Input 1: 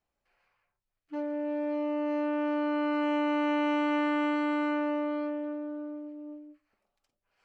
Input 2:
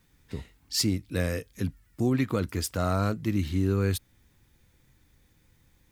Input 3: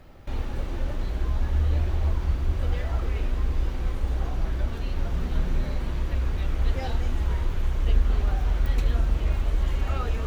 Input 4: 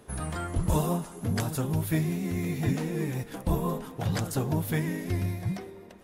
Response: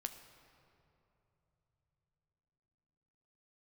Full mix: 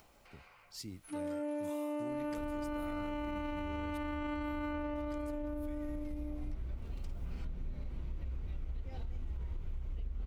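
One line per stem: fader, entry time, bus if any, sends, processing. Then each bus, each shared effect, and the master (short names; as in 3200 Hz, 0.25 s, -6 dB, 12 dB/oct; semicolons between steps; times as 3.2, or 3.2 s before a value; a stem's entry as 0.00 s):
0.0 dB, 0.00 s, no bus, no send, limiter -29 dBFS, peak gain reduction 6 dB; upward compressor, threshold -46 dBFS
-20.0 dB, 0.00 s, no bus, no send, dry
-17.5 dB, 2.10 s, bus A, send -18 dB, low shelf 440 Hz +10.5 dB
-14.5 dB, 0.95 s, bus A, no send, HPF 1300 Hz
bus A: 0.0 dB, bell 2300 Hz +4.5 dB 0.73 oct; compressor 6:1, threshold -37 dBFS, peak gain reduction 15 dB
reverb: on, pre-delay 10 ms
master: notch 1700 Hz, Q 9.9; limiter -32 dBFS, peak gain reduction 9 dB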